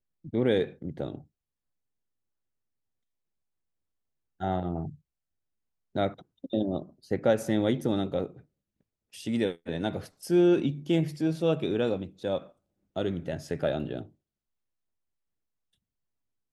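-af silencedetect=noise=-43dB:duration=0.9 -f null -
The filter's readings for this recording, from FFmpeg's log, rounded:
silence_start: 1.21
silence_end: 4.40 | silence_duration: 3.19
silence_start: 4.95
silence_end: 5.95 | silence_duration: 1.01
silence_start: 14.06
silence_end: 16.53 | silence_duration: 2.46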